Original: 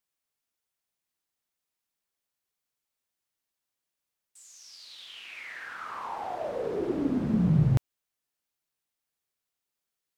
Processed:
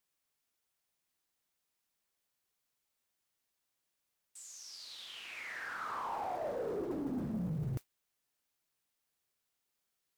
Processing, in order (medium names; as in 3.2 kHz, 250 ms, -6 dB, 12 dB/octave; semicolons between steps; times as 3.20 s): modulation noise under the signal 34 dB; reverse; compression 10:1, threshold -33 dBFS, peak gain reduction 15.5 dB; reverse; saturation -33 dBFS, distortion -14 dB; dynamic bell 2.8 kHz, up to -5 dB, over -59 dBFS, Q 0.91; trim +2 dB